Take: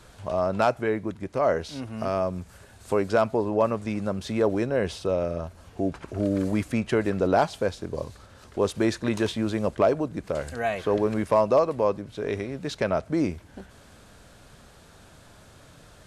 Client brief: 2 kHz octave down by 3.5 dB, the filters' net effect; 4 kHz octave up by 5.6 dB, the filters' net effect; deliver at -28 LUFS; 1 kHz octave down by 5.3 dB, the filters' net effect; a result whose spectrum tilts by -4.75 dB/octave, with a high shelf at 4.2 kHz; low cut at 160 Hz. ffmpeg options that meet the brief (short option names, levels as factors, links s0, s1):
-af "highpass=160,equalizer=f=1000:t=o:g=-7.5,equalizer=f=2000:t=o:g=-4.5,equalizer=f=4000:t=o:g=3.5,highshelf=f=4200:g=8.5"